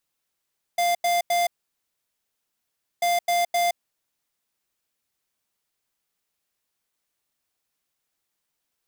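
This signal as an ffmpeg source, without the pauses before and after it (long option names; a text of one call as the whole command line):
ffmpeg -f lavfi -i "aevalsrc='0.0841*(2*lt(mod(697*t,1),0.5)-1)*clip(min(mod(mod(t,2.24),0.26),0.17-mod(mod(t,2.24),0.26))/0.005,0,1)*lt(mod(t,2.24),0.78)':duration=4.48:sample_rate=44100" out.wav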